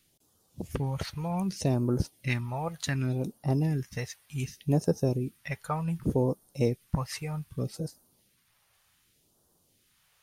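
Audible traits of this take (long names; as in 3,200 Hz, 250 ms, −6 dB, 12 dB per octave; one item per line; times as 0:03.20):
phaser sweep stages 2, 0.66 Hz, lowest notch 260–2,200 Hz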